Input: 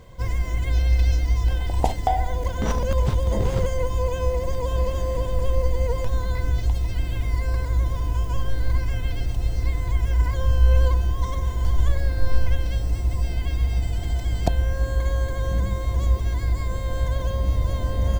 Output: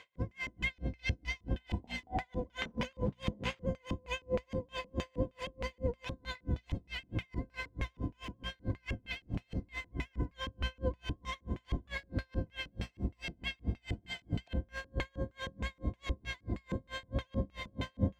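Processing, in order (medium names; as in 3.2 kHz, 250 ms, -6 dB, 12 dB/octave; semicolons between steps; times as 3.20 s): LFO band-pass square 3.2 Hz 230–2500 Hz; hum notches 60/120/180/240 Hz; logarithmic tremolo 4.6 Hz, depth 37 dB; trim +10.5 dB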